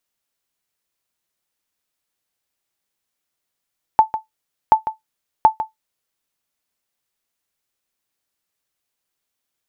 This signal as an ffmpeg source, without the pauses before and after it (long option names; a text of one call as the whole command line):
ffmpeg -f lavfi -i "aevalsrc='0.841*(sin(2*PI*877*mod(t,0.73))*exp(-6.91*mod(t,0.73)/0.14)+0.251*sin(2*PI*877*max(mod(t,0.73)-0.15,0))*exp(-6.91*max(mod(t,0.73)-0.15,0)/0.14))':duration=2.19:sample_rate=44100" out.wav